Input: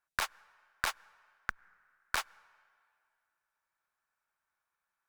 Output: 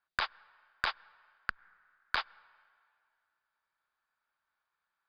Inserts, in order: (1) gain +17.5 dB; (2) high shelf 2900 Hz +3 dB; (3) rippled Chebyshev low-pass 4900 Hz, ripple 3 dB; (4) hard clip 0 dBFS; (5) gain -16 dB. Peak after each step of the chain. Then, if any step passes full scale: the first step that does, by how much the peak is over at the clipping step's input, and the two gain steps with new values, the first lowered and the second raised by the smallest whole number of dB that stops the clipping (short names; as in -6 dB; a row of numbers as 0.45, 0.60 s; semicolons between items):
+5.5, +7.0, +4.0, 0.0, -16.0 dBFS; step 1, 4.0 dB; step 1 +13.5 dB, step 5 -12 dB